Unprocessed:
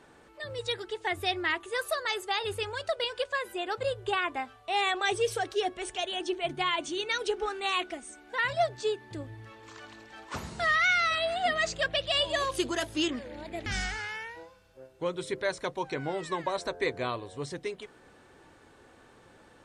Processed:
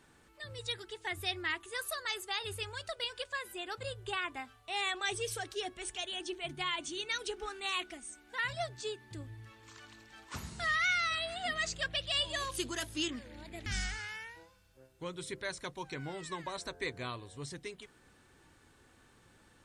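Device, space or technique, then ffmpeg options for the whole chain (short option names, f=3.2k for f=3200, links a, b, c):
smiley-face EQ: -af "lowshelf=f=130:g=4.5,equalizer=f=570:t=o:w=1.6:g=-7.5,highshelf=f=7.4k:g=8.5,volume=-5dB"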